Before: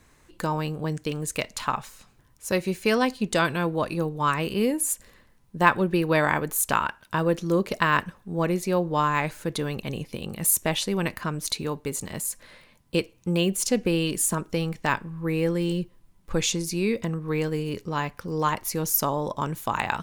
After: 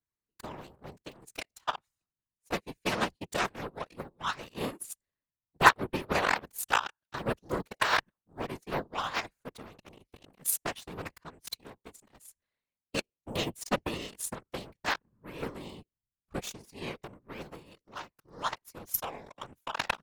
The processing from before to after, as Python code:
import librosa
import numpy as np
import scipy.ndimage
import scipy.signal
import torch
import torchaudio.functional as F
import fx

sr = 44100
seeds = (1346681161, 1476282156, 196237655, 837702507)

y = fx.cheby_harmonics(x, sr, harmonics=(7,), levels_db=(-17,), full_scale_db=-2.5)
y = fx.whisperise(y, sr, seeds[0])